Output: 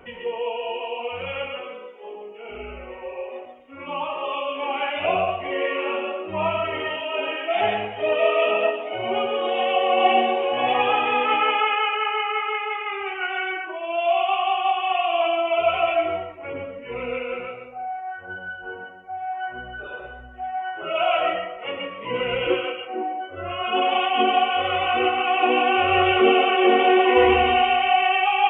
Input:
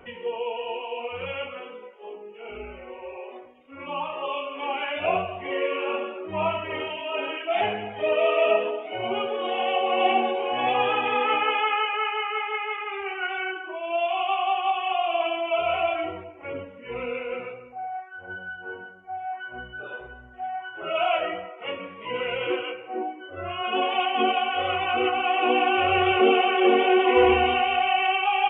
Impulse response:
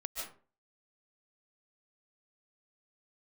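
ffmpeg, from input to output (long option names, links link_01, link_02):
-filter_complex "[0:a]asettb=1/sr,asplit=3[link_01][link_02][link_03];[link_01]atrim=end=22.024[link_04];[link_02]atrim=start=22.02:end=22.54,asetpts=PTS-STARTPTS,afade=type=in:duration=0.004:curve=qsin,afade=type=out:start_time=0.516:duration=0.004:curve=qsin,lowshelf=frequency=340:gain=7.5[link_05];[link_03]atrim=start=22.536[link_06];[link_04][link_05]acrossfade=duration=0.004:curve1=hsin:curve2=qsin[link_07];[link_07][link_06]acrossfade=duration=0.004:curve1=qsin:curve2=hsin[link_08];[1:a]atrim=start_sample=2205,afade=type=out:start_time=0.19:duration=0.01,atrim=end_sample=8820[link_09];[link_08][link_09]afir=irnorm=-1:irlink=0,volume=5dB"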